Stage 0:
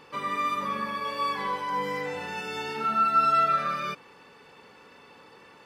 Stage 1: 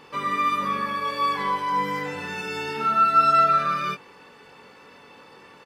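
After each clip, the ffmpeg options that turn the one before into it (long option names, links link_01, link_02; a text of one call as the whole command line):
ffmpeg -i in.wav -filter_complex "[0:a]asplit=2[link_01][link_02];[link_02]adelay=21,volume=-6dB[link_03];[link_01][link_03]amix=inputs=2:normalize=0,volume=2.5dB" out.wav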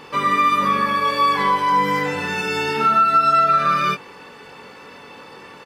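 ffmpeg -i in.wav -af "acompressor=threshold=-20dB:ratio=10,volume=8dB" out.wav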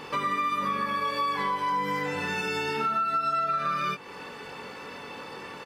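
ffmpeg -i in.wav -af "acompressor=threshold=-29dB:ratio=3" out.wav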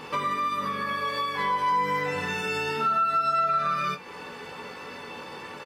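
ffmpeg -i in.wav -af "aecho=1:1:12|62:0.447|0.141" out.wav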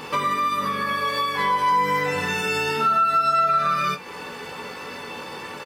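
ffmpeg -i in.wav -af "highshelf=frequency=7100:gain=7,volume=4.5dB" out.wav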